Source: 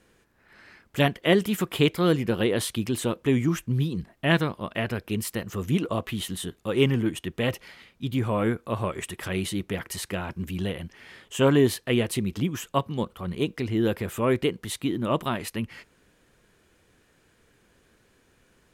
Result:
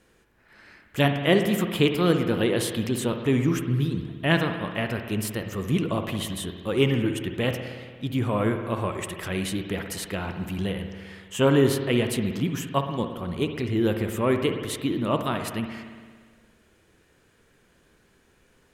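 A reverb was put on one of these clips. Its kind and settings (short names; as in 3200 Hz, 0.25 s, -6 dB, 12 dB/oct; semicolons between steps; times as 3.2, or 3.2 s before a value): spring tank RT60 1.7 s, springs 57 ms, chirp 55 ms, DRR 6 dB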